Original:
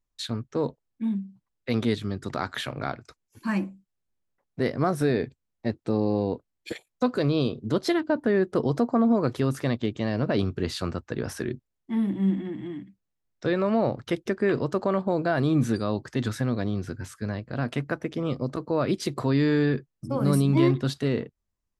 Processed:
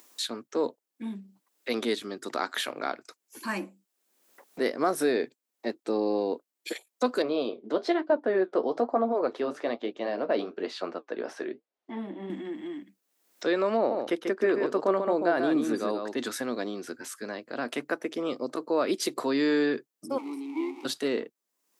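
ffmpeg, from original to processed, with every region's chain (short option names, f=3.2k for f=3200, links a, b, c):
-filter_complex "[0:a]asettb=1/sr,asplit=3[a][b][c];[a]atrim=end=7.224[d];[b]atrim=start=7.22:end=12.3,asetpts=PTS-STARTPTS,afade=t=in:d=0.004:c=qsin,afade=t=out:st=5.076:d=0.004:c=qsin,equalizer=f=660:w=1.4:g=7.5,flanger=delay=4.3:depth=9.7:regen=-58:speed=1.1:shape=triangular,highpass=130,lowpass=3.7k[e];[c]atrim=start=12.296[f];[d][e]acrossfade=d=0.004:c1=hsin:c2=qsin[g];[g][f]acrossfade=d=0.004:c1=qsin:c2=hsin,asettb=1/sr,asplit=3[h][i][j];[h]atrim=end=13.774[k];[i]atrim=start=13.77:end=16.18,asetpts=PTS-STARTPTS,afade=t=in:d=0.004:c=qsin,afade=t=out:st=2.406:d=0.004:c=qsin,highshelf=f=3.4k:g=-10,aecho=1:1:140:0.531,atrim=end_sample=106281[l];[j]atrim=start=16.176[m];[k][l]acrossfade=d=0.004:c1=hsin:c2=qsin[n];[n][m]acrossfade=d=0.004:c1=qsin:c2=hsin,asettb=1/sr,asplit=3[o][p][q];[o]atrim=end=20.184[r];[p]atrim=start=20.18:end=20.85,asetpts=PTS-STARTPTS,afade=t=in:d=0.004:c=qsin,afade=t=out:st=0.666:d=0.004:c=qsin,aeval=exprs='val(0)+0.5*0.0631*sgn(val(0))':c=same,asplit=3[s][t][u];[s]bandpass=f=300:t=q:w=8,volume=0dB[v];[t]bandpass=f=870:t=q:w=8,volume=-6dB[w];[u]bandpass=f=2.24k:t=q:w=8,volume=-9dB[x];[v][w][x]amix=inputs=3:normalize=0,bass=f=250:g=-14,treble=f=4k:g=4[y];[q]atrim=start=20.846[z];[r][y]acrossfade=d=0.004:c1=hsin:c2=qsin[aa];[aa][z]acrossfade=d=0.004:c1=qsin:c2=hsin,highpass=f=280:w=0.5412,highpass=f=280:w=1.3066,highshelf=f=6.6k:g=9,acompressor=mode=upward:threshold=-36dB:ratio=2.5"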